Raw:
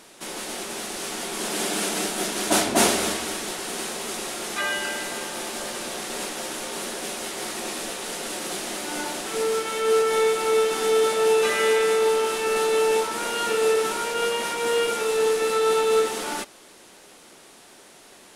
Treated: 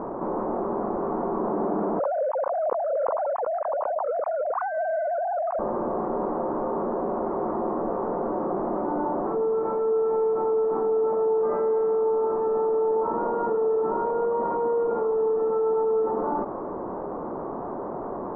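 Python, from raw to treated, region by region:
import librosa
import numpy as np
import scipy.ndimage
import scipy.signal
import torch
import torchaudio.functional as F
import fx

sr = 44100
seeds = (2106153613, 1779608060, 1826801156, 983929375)

y = fx.chain(x, sr, fx.sine_speech(),
    fx.over_compress(threshold_db=-26.0, ratio=-1.0), at=(1.99, 5.59))
y = scipy.signal.sosfilt(scipy.signal.ellip(4, 1.0, 70, 1100.0, 'lowpass', fs=sr, output='sos'), y)
y = fx.env_flatten(y, sr, amount_pct=70)
y = y * librosa.db_to_amplitude(-4.0)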